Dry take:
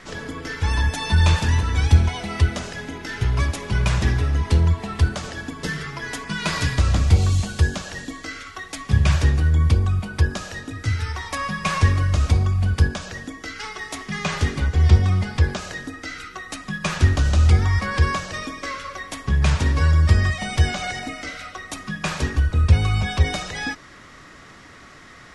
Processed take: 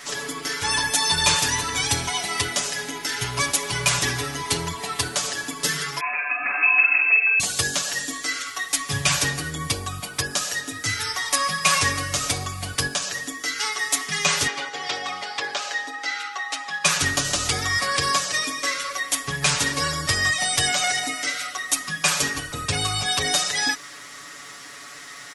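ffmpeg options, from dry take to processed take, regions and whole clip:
ffmpeg -i in.wav -filter_complex "[0:a]asettb=1/sr,asplit=3[link_01][link_02][link_03];[link_01]atrim=end=6.004[link_04];[link_02]atrim=start=6:end=7.4,asetpts=PTS-STARTPTS,afade=type=in:duration=0.004:curve=qsin,afade=type=out:start_time=1.396:duration=0.004:curve=qsin,acrossover=split=120|1800[link_05][link_06][link_07];[link_05]acompressor=threshold=-25dB:ratio=4[link_08];[link_06]acompressor=threshold=-28dB:ratio=4[link_09];[link_07]acompressor=threshold=-33dB:ratio=4[link_10];[link_08][link_09][link_10]amix=inputs=3:normalize=0,asplit=2[link_11][link_12];[link_12]adelay=47,volume=-4dB[link_13];[link_11][link_13]amix=inputs=2:normalize=0,atrim=end_sample=61740,lowpass=frequency=2300:width_type=q:width=0.5098,lowpass=frequency=2300:width_type=q:width=0.6013,lowpass=frequency=2300:width_type=q:width=0.9,lowpass=frequency=2300:width_type=q:width=2.563,afreqshift=-2700[link_14];[link_03]atrim=start=7.396[link_15];[link_04][link_14]acrossfade=duration=0.004:curve1=hsin:curve2=qsin[link_16];[link_16][link_15]acrossfade=duration=0.004:curve1=qsin:curve2=hsin,asettb=1/sr,asplit=3[link_17][link_18][link_19];[link_17]atrim=end=14.474[link_20];[link_18]atrim=start=14.47:end=16.85,asetpts=PTS-STARTPTS,afade=type=in:duration=0.004:curve=qsin,afade=type=out:start_time=2.376:duration=0.004:curve=qsin,aeval=exprs='val(0)+0.0141*sin(2*PI*820*n/s)':channel_layout=same,highpass=440,lowpass=4400[link_21];[link_19]atrim=start=16.846[link_22];[link_20][link_21]acrossfade=duration=0.004:curve1=hsin:curve2=qsin[link_23];[link_23][link_22]acrossfade=duration=0.004:curve1=qsin:curve2=hsin,aemphasis=mode=production:type=riaa,aecho=1:1:7:0.82" out.wav

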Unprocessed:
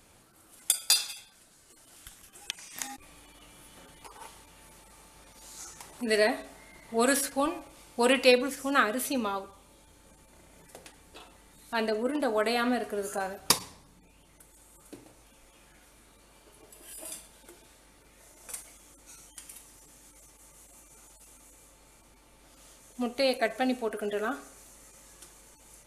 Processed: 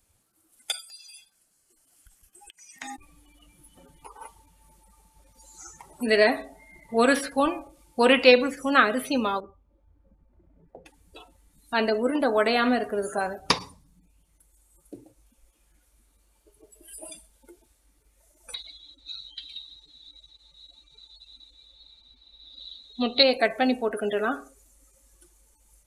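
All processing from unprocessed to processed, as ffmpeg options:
ffmpeg -i in.wav -filter_complex "[0:a]asettb=1/sr,asplit=3[link_01][link_02][link_03];[link_01]atrim=end=0.804[link_04];[link_02]atrim=start=0.8:end=2.82,asetpts=PTS-STARTPTS,afade=type=in:duration=0.004:curve=qsin,afade=type=out:start_time=2.016:duration=0.004:curve=qsin,bandreject=frequency=3700:width=8.9,acompressor=threshold=-45dB:ratio=10:attack=3.2:release=140:knee=1:detection=peak[link_05];[link_03]atrim=start=2.816[link_06];[link_04][link_05]acrossfade=duration=0.004:curve1=hsin:curve2=qsin[link_07];[link_07][link_06]acrossfade=duration=0.004:curve1=qsin:curve2=hsin,asettb=1/sr,asplit=3[link_08][link_09][link_10];[link_08]atrim=end=9.404[link_11];[link_09]atrim=start=9.4:end=10.86,asetpts=PTS-STARTPTS,afade=type=in:duration=0.004:curve=qsin,afade=type=out:start_time=1.456:duration=0.004:curve=qsin,lowpass=1200,adynamicequalizer=threshold=0.001:dfrequency=900:dqfactor=0.78:tfrequency=900:tqfactor=0.78:attack=5:release=100:ratio=0.375:range=2.5:mode=cutabove:tftype=bell[link_12];[link_10]atrim=start=10.856[link_13];[link_11][link_12]acrossfade=duration=0.004:curve1=hsin:curve2=qsin[link_14];[link_14][link_13]acrossfade=duration=0.004:curve1=qsin:curve2=hsin,asettb=1/sr,asplit=3[link_15][link_16][link_17];[link_15]atrim=end=18.544[link_18];[link_16]atrim=start=18.54:end=23.23,asetpts=PTS-STARTPTS,afade=type=in:duration=0.004:curve=qsin,afade=type=out:start_time=4.686:duration=0.004:curve=qsin,lowpass=frequency=3900:width_type=q:width=16,aecho=1:1:155:0.133,atrim=end_sample=206829[link_19];[link_17]atrim=start=23.226[link_20];[link_18][link_19]acrossfade=duration=0.004:curve1=hsin:curve2=qsin[link_21];[link_21][link_20]acrossfade=duration=0.004:curve1=qsin:curve2=hsin,acrossover=split=4100[link_22][link_23];[link_23]acompressor=threshold=-47dB:ratio=4:attack=1:release=60[link_24];[link_22][link_24]amix=inputs=2:normalize=0,afftdn=noise_reduction=20:noise_floor=-46,highshelf=frequency=6100:gain=11.5,volume=5dB" out.wav

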